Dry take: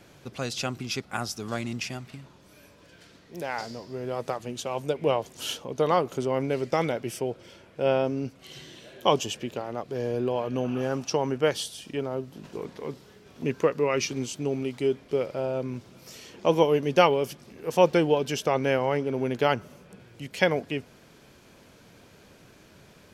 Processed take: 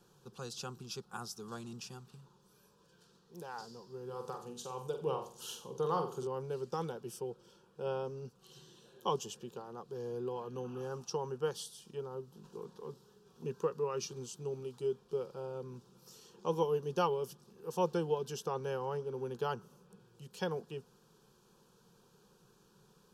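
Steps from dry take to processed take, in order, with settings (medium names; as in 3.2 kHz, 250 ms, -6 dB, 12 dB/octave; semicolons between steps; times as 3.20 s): static phaser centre 420 Hz, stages 8; 4.05–6.27 s: flutter echo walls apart 7.8 m, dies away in 0.41 s; trim -9 dB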